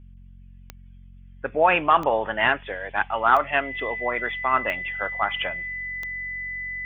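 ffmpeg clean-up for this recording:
ffmpeg -i in.wav -af "adeclick=threshold=4,bandreject=frequency=45.3:width_type=h:width=4,bandreject=frequency=90.6:width_type=h:width=4,bandreject=frequency=135.9:width_type=h:width=4,bandreject=frequency=181.2:width_type=h:width=4,bandreject=frequency=226.5:width_type=h:width=4,bandreject=frequency=2000:width=30" out.wav

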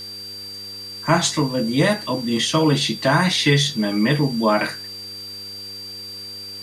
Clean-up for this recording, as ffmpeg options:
ffmpeg -i in.wav -af "bandreject=frequency=99:width_type=h:width=4,bandreject=frequency=198:width_type=h:width=4,bandreject=frequency=297:width_type=h:width=4,bandreject=frequency=396:width_type=h:width=4,bandreject=frequency=495:width_type=h:width=4,bandreject=frequency=4700:width=30,afwtdn=0.0056" out.wav

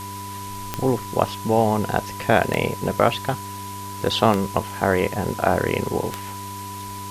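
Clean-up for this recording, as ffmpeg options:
ffmpeg -i in.wav -af "adeclick=threshold=4,bandreject=frequency=99.1:width_type=h:width=4,bandreject=frequency=198.2:width_type=h:width=4,bandreject=frequency=297.3:width_type=h:width=4,bandreject=frequency=396.4:width_type=h:width=4,bandreject=frequency=990:width=30,afwtdn=0.011" out.wav

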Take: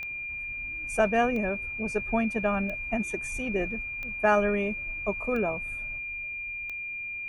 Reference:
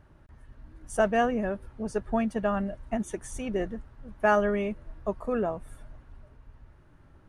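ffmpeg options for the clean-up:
ffmpeg -i in.wav -af "adeclick=threshold=4,bandreject=frequency=2400:width=30,asetnsamples=nb_out_samples=441:pad=0,asendcmd='5.98 volume volume 4.5dB',volume=0dB" out.wav

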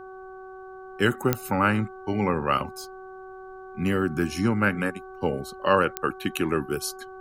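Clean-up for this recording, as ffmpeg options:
ffmpeg -i in.wav -af "adeclick=threshold=4,bandreject=frequency=377.5:width_type=h:width=4,bandreject=frequency=755:width_type=h:width=4,bandreject=frequency=1132.5:width_type=h:width=4,bandreject=frequency=1510:width_type=h:width=4,agate=range=-21dB:threshold=-34dB" out.wav

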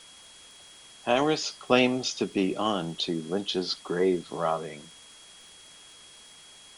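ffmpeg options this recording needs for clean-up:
ffmpeg -i in.wav -af "adeclick=threshold=4,bandreject=frequency=3300:width=30,afwtdn=0.0032" out.wav

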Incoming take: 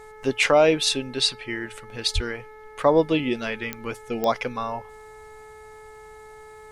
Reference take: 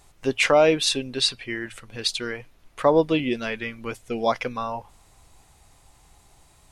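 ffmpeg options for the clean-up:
ffmpeg -i in.wav -filter_complex "[0:a]adeclick=threshold=4,bandreject=frequency=431.1:width_type=h:width=4,bandreject=frequency=862.2:width_type=h:width=4,bandreject=frequency=1293.3:width_type=h:width=4,bandreject=frequency=1724.4:width_type=h:width=4,bandreject=frequency=2155.5:width_type=h:width=4,asplit=3[link_01][link_02][link_03];[link_01]afade=type=out:start_time=2.14:duration=0.02[link_04];[link_02]highpass=frequency=140:width=0.5412,highpass=frequency=140:width=1.3066,afade=type=in:start_time=2.14:duration=0.02,afade=type=out:start_time=2.26:duration=0.02[link_05];[link_03]afade=type=in:start_time=2.26:duration=0.02[link_06];[link_04][link_05][link_06]amix=inputs=3:normalize=0" out.wav

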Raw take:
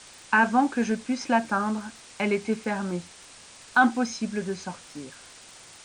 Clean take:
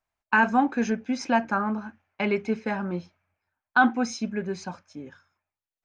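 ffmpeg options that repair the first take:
ffmpeg -i in.wav -af "adeclick=threshold=4,afwtdn=0.0056,asetnsamples=nb_out_samples=441:pad=0,asendcmd='5.22 volume volume -8.5dB',volume=0dB" out.wav

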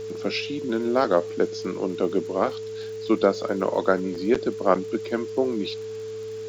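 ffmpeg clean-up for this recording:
ffmpeg -i in.wav -af "adeclick=threshold=4,bandreject=frequency=105.9:width_type=h:width=4,bandreject=frequency=211.8:width_type=h:width=4,bandreject=frequency=317.7:width_type=h:width=4,bandreject=frequency=423.6:width_type=h:width=4,bandreject=frequency=440:width=30,afwtdn=0.004" out.wav

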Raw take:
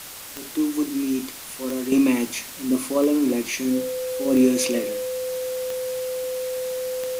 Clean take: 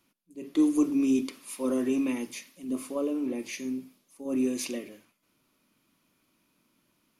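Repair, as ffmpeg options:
ffmpeg -i in.wav -af "adeclick=threshold=4,bandreject=frequency=510:width=30,afwtdn=0.014,asetnsamples=nb_out_samples=441:pad=0,asendcmd='1.92 volume volume -10dB',volume=0dB" out.wav

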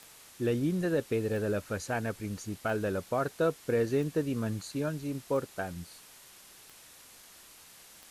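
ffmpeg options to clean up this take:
ffmpeg -i in.wav -af "adeclick=threshold=4,afwtdn=0.0025" out.wav

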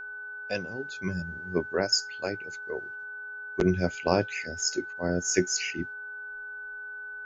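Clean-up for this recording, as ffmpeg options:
ffmpeg -i in.wav -af "bandreject=frequency=416.3:width_type=h:width=4,bandreject=frequency=832.6:width_type=h:width=4,bandreject=frequency=1248.9:width_type=h:width=4,bandreject=frequency=1500:width=30" out.wav

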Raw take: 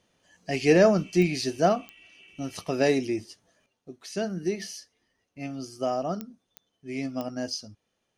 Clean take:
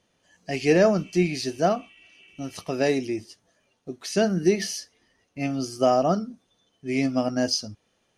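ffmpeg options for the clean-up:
ffmpeg -i in.wav -af "adeclick=threshold=4,asetnsamples=nb_out_samples=441:pad=0,asendcmd='3.66 volume volume 8dB',volume=0dB" out.wav

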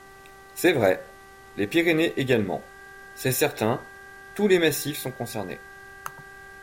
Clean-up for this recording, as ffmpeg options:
ffmpeg -i in.wav -af "bandreject=frequency=389.8:width_type=h:width=4,bandreject=frequency=779.6:width_type=h:width=4,bandreject=frequency=1169.4:width_type=h:width=4,bandreject=frequency=1559.2:width_type=h:width=4,bandreject=frequency=1949:width_type=h:width=4,bandreject=frequency=1600:width=30,agate=range=-21dB:threshold=-39dB" out.wav

